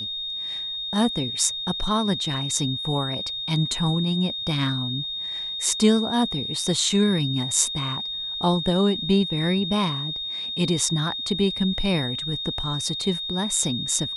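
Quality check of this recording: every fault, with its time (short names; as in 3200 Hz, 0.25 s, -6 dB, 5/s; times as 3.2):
tone 3700 Hz -28 dBFS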